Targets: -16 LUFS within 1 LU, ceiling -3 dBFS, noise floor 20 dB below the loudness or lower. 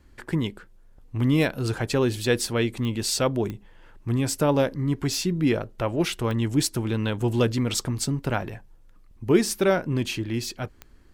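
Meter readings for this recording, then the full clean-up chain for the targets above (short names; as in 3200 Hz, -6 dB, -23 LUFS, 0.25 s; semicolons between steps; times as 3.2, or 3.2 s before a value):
clicks 4; loudness -25.0 LUFS; peak -7.0 dBFS; loudness target -16.0 LUFS
-> de-click; gain +9 dB; limiter -3 dBFS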